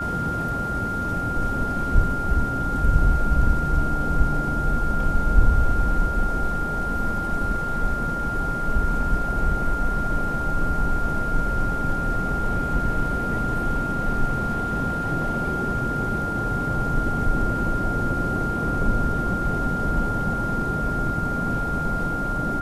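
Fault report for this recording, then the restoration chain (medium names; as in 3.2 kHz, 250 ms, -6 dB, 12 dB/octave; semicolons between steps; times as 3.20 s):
whine 1.4 kHz -26 dBFS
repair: band-stop 1.4 kHz, Q 30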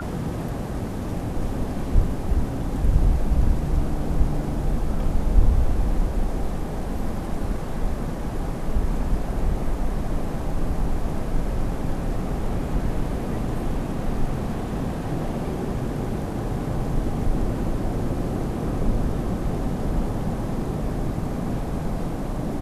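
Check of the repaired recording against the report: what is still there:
nothing left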